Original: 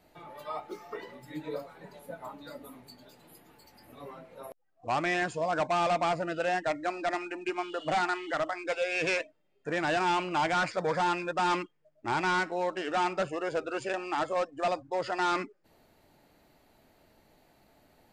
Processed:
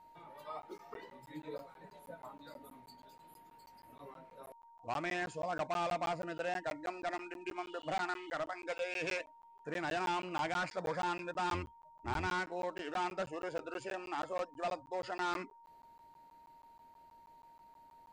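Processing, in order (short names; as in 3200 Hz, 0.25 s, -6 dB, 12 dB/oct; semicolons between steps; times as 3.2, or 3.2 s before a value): 11.52–12.27 octaver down 2 oct, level +4 dB; whine 930 Hz -49 dBFS; crackling interface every 0.16 s, samples 512, zero, from 0.62; gain -8 dB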